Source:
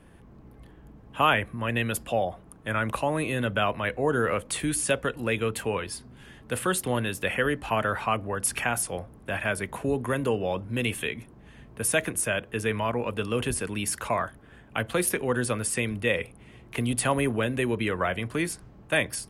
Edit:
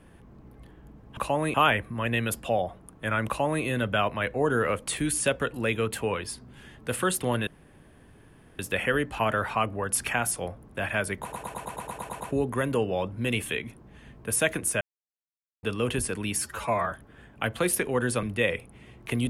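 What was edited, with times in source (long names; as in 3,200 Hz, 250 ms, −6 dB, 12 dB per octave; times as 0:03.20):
0:02.90–0:03.27: duplicate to 0:01.17
0:07.10: splice in room tone 1.12 s
0:09.73: stutter 0.11 s, 10 plays
0:12.33–0:13.15: silence
0:13.90–0:14.26: time-stretch 1.5×
0:15.57–0:15.89: remove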